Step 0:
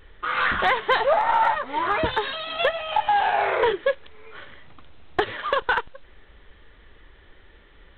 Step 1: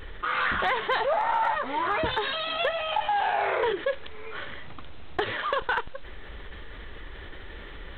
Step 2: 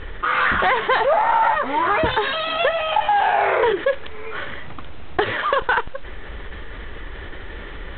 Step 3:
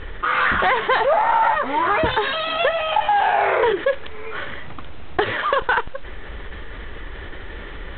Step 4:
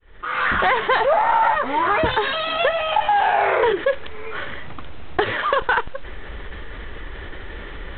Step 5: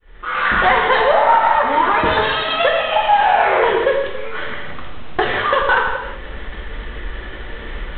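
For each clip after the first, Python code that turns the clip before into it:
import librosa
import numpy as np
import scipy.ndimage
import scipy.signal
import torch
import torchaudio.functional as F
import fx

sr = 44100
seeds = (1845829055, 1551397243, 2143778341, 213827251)

y1 = fx.env_flatten(x, sr, amount_pct=50)
y1 = y1 * librosa.db_to_amplitude(-6.5)
y2 = scipy.signal.sosfilt(scipy.signal.butter(2, 3200.0, 'lowpass', fs=sr, output='sos'), y1)
y2 = y2 * librosa.db_to_amplitude(8.0)
y3 = y2
y4 = fx.fade_in_head(y3, sr, length_s=0.57)
y5 = fx.rev_gated(y4, sr, seeds[0], gate_ms=400, shape='falling', drr_db=-0.5)
y5 = y5 * librosa.db_to_amplitude(1.0)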